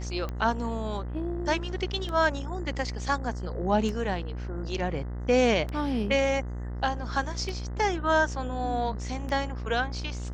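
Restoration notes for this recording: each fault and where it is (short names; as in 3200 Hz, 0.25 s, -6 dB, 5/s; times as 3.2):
buzz 60 Hz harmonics 34 -34 dBFS
tick 33 1/3 rpm -21 dBFS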